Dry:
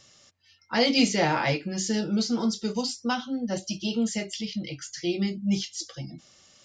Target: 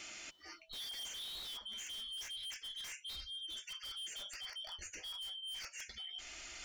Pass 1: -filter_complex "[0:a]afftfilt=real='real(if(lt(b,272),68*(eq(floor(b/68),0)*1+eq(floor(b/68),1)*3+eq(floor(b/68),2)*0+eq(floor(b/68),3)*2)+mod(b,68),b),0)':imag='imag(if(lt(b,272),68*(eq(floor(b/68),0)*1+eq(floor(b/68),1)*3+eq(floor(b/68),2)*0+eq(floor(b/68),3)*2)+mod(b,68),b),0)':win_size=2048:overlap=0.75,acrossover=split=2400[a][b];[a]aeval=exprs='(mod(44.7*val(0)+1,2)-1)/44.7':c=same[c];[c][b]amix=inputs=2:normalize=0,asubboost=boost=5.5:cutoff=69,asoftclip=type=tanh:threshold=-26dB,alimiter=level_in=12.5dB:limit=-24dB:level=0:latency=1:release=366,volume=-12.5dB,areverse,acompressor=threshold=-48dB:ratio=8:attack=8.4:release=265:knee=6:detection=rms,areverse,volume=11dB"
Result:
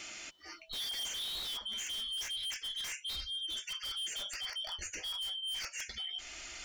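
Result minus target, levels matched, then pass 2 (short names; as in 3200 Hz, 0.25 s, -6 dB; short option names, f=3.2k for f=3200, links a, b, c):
compressor: peak gain reduction -6.5 dB
-filter_complex "[0:a]afftfilt=real='real(if(lt(b,272),68*(eq(floor(b/68),0)*1+eq(floor(b/68),1)*3+eq(floor(b/68),2)*0+eq(floor(b/68),3)*2)+mod(b,68),b),0)':imag='imag(if(lt(b,272),68*(eq(floor(b/68),0)*1+eq(floor(b/68),1)*3+eq(floor(b/68),2)*0+eq(floor(b/68),3)*2)+mod(b,68),b),0)':win_size=2048:overlap=0.75,acrossover=split=2400[a][b];[a]aeval=exprs='(mod(44.7*val(0)+1,2)-1)/44.7':c=same[c];[c][b]amix=inputs=2:normalize=0,asubboost=boost=5.5:cutoff=69,asoftclip=type=tanh:threshold=-26dB,alimiter=level_in=12.5dB:limit=-24dB:level=0:latency=1:release=366,volume=-12.5dB,areverse,acompressor=threshold=-55.5dB:ratio=8:attack=8.4:release=265:knee=6:detection=rms,areverse,volume=11dB"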